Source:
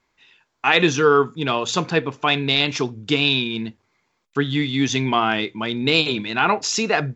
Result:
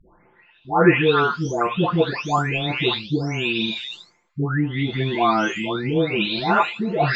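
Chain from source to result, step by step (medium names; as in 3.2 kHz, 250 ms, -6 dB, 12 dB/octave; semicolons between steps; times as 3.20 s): delay that grows with frequency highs late, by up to 743 ms; low-pass 1.5 kHz 6 dB/octave; reverse; upward compressor, threshold -30 dBFS; reverse; trim +4.5 dB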